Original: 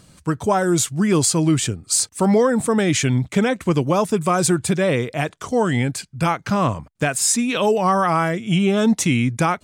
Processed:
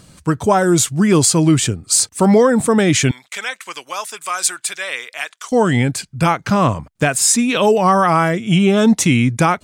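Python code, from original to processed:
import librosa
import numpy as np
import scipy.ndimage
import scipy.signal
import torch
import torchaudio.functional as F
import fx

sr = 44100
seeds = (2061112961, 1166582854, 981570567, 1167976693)

y = fx.highpass(x, sr, hz=1500.0, slope=12, at=(3.11, 5.52))
y = y * librosa.db_to_amplitude(4.5)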